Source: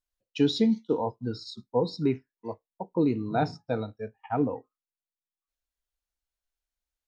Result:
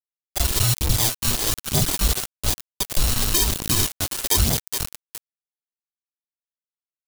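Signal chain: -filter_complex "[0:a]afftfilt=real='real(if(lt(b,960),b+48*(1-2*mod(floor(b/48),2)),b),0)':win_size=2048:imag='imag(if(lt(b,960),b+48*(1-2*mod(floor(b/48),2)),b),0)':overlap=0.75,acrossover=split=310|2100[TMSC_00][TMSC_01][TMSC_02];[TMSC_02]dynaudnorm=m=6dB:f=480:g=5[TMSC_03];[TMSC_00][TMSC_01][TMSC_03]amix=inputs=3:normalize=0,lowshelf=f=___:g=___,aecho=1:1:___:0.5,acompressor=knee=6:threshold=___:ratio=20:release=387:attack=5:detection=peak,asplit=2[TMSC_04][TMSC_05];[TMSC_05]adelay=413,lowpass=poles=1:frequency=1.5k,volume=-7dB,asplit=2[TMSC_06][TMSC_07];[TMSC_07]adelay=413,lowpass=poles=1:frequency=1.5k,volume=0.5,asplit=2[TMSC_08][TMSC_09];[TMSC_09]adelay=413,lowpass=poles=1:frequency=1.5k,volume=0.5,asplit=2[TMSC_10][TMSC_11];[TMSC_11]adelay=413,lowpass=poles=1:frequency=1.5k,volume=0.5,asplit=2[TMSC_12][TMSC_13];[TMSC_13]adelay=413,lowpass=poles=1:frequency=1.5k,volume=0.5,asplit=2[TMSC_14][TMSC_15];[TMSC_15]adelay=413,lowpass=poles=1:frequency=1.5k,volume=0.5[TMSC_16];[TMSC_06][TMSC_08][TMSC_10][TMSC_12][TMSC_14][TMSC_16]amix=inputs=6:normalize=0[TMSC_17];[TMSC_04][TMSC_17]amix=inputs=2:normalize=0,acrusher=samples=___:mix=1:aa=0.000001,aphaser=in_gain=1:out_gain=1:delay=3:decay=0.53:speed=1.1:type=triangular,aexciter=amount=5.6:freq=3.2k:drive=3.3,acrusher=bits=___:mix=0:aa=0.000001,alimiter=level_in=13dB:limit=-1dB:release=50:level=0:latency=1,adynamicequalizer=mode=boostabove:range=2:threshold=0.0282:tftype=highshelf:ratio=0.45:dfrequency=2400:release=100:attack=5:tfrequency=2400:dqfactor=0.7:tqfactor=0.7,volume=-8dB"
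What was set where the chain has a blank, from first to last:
99, -10.5, 2.9, -22dB, 32, 4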